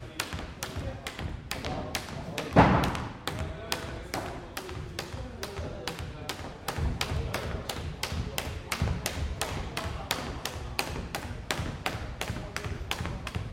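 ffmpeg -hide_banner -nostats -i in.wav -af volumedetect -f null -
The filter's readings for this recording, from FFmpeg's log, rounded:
mean_volume: -32.6 dB
max_volume: -7.9 dB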